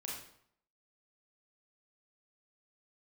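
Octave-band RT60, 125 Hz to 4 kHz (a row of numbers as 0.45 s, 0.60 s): 0.70 s, 0.65 s, 0.65 s, 0.70 s, 0.60 s, 0.55 s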